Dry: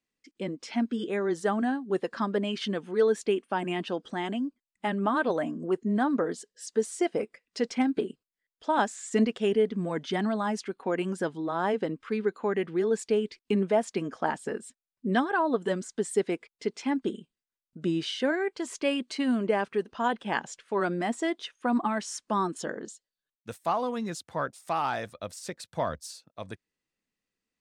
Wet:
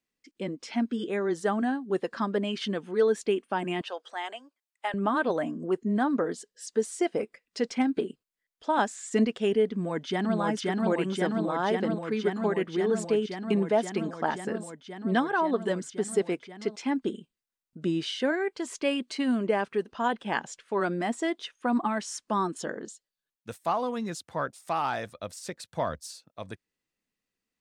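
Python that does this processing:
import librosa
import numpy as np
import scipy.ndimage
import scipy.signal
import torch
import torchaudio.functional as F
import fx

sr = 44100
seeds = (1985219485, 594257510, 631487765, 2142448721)

y = fx.highpass(x, sr, hz=540.0, slope=24, at=(3.81, 4.94))
y = fx.echo_throw(y, sr, start_s=9.71, length_s=0.68, ms=530, feedback_pct=85, wet_db=-1.0)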